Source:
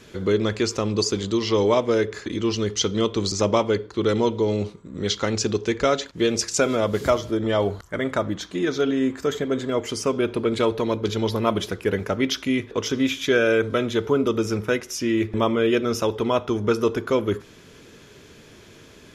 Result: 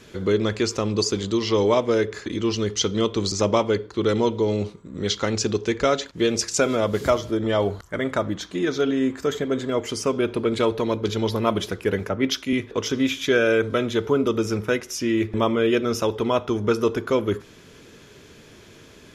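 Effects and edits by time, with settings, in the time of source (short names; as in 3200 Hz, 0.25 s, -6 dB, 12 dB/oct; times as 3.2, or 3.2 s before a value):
12.09–12.53 three-band expander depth 70%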